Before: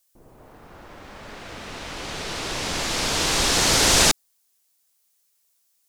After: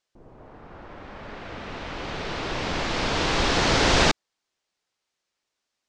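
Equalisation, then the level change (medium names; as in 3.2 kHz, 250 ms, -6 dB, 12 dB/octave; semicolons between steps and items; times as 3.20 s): low-pass 7.8 kHz 12 dB/octave; distance through air 95 m; treble shelf 3.7 kHz -7 dB; +2.0 dB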